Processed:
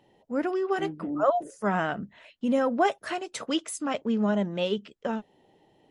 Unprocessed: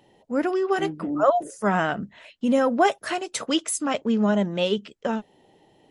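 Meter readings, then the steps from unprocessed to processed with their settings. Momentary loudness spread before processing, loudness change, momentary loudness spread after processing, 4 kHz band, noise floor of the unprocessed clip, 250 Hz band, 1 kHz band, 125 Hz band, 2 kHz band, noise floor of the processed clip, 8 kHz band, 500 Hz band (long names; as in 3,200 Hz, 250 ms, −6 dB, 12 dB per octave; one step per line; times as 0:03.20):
8 LU, −4.0 dB, 8 LU, −5.5 dB, −61 dBFS, −4.0 dB, −4.0 dB, −4.0 dB, −4.5 dB, −65 dBFS, −8.5 dB, −4.0 dB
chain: high-shelf EQ 5,600 Hz −6.5 dB
level −4 dB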